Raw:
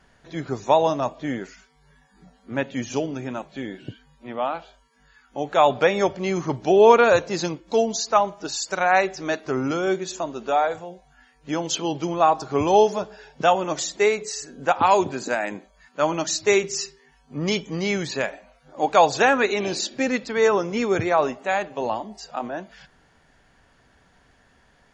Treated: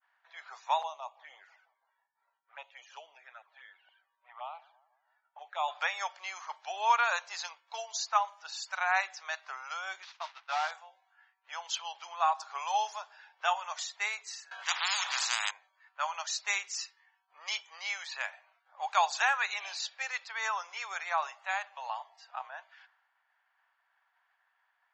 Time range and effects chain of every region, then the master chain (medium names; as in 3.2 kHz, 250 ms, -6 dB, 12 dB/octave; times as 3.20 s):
0.82–5.68 s: treble shelf 2.5 kHz -8 dB + touch-sensitive flanger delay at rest 2.3 ms, full sweep at -23.5 dBFS + feedback echo behind a band-pass 165 ms, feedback 60%, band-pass 540 Hz, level -22.5 dB
10.02–10.71 s: one-bit delta coder 32 kbps, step -32 dBFS + expander -27 dBFS + tilt shelf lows -4.5 dB, about 660 Hz
14.51–15.51 s: treble shelf 5.4 kHz -9 dB + spectrum-flattening compressor 10:1
whole clip: level-controlled noise filter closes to 2.2 kHz, open at -16 dBFS; expander -54 dBFS; steep high-pass 820 Hz 36 dB/octave; trim -6.5 dB